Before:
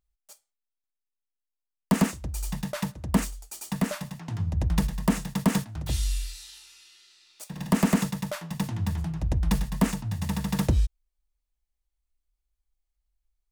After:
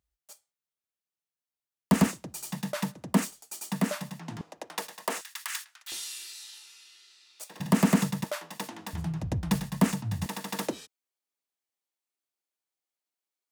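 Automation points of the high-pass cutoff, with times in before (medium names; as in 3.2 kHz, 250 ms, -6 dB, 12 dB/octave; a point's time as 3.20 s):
high-pass 24 dB/octave
52 Hz
from 2.07 s 160 Hz
from 4.41 s 410 Hz
from 5.21 s 1.4 kHz
from 5.92 s 340 Hz
from 7.60 s 94 Hz
from 8.24 s 290 Hz
from 8.93 s 91 Hz
from 10.26 s 270 Hz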